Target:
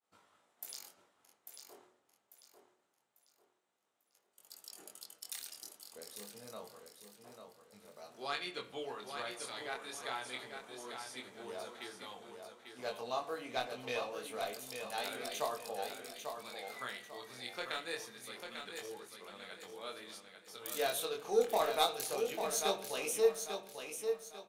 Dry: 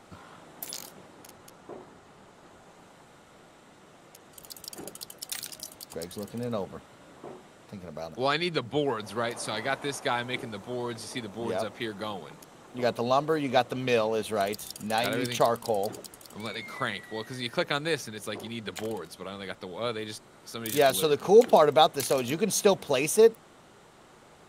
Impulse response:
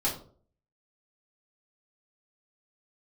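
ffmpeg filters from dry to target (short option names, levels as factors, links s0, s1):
-filter_complex "[0:a]agate=range=0.0224:threshold=0.00794:ratio=3:detection=peak,highpass=f=640:p=1,highshelf=f=5100:g=6.5,aeval=exprs='0.501*(cos(1*acos(clip(val(0)/0.501,-1,1)))-cos(1*PI/2))+0.0891*(cos(3*acos(clip(val(0)/0.501,-1,1)))-cos(3*PI/2))':c=same,flanger=delay=20:depth=4.8:speed=0.26,aecho=1:1:845|1690|2535|3380:0.473|0.161|0.0547|0.0186,asplit=2[s0][s1];[1:a]atrim=start_sample=2205,asetrate=24255,aresample=44100,lowpass=5300[s2];[s1][s2]afir=irnorm=-1:irlink=0,volume=0.106[s3];[s0][s3]amix=inputs=2:normalize=0,volume=0.668"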